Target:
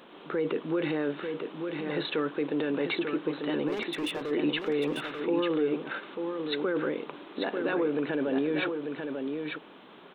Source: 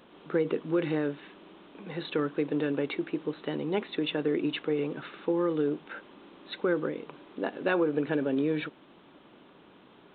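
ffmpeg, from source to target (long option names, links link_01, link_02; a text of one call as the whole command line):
ffmpeg -i in.wav -filter_complex "[0:a]lowshelf=frequency=160:gain=-8.5,alimiter=level_in=2dB:limit=-24dB:level=0:latency=1:release=16,volume=-2dB,equalizer=frequency=79:width=1.3:gain=-9.5,asplit=3[link_01][link_02][link_03];[link_01]afade=type=out:start_time=3.67:duration=0.02[link_04];[link_02]volume=36dB,asoftclip=hard,volume=-36dB,afade=type=in:start_time=3.67:duration=0.02,afade=type=out:start_time=4.3:duration=0.02[link_05];[link_03]afade=type=in:start_time=4.3:duration=0.02[link_06];[link_04][link_05][link_06]amix=inputs=3:normalize=0,aecho=1:1:893:0.531,volume=5.5dB" out.wav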